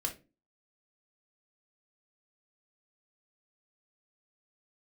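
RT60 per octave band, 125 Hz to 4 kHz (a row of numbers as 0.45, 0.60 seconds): 0.40, 0.50, 0.35, 0.25, 0.25, 0.20 seconds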